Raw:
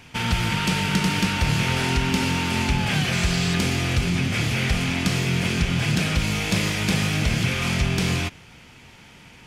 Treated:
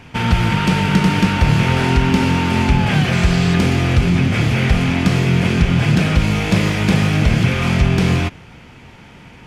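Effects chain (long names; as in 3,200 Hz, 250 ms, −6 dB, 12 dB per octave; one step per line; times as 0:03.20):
high-shelf EQ 2,700 Hz −12 dB
level +8.5 dB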